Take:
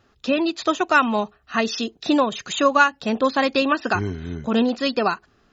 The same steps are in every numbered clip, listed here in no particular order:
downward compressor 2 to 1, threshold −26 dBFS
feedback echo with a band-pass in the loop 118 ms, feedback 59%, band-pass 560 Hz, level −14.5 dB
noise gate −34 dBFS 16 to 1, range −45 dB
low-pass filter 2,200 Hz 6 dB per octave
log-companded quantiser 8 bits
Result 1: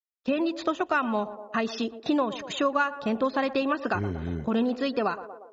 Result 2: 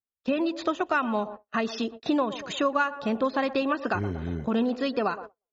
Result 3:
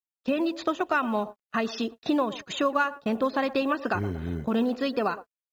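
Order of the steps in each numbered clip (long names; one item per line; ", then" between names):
noise gate, then feedback echo with a band-pass in the loop, then log-companded quantiser, then downward compressor, then low-pass filter
log-companded quantiser, then feedback echo with a band-pass in the loop, then noise gate, then downward compressor, then low-pass filter
downward compressor, then feedback echo with a band-pass in the loop, then noise gate, then low-pass filter, then log-companded quantiser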